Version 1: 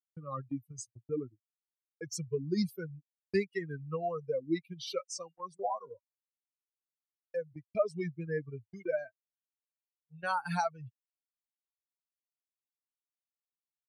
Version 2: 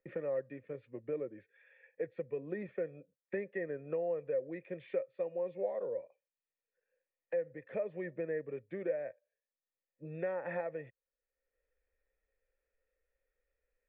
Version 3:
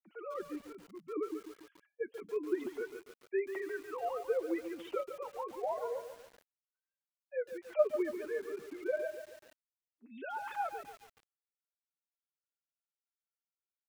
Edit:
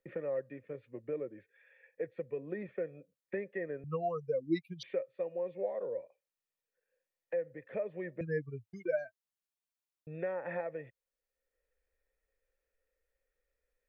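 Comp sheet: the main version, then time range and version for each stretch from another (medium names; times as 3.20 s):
2
3.84–4.83 s: from 1
8.21–10.07 s: from 1
not used: 3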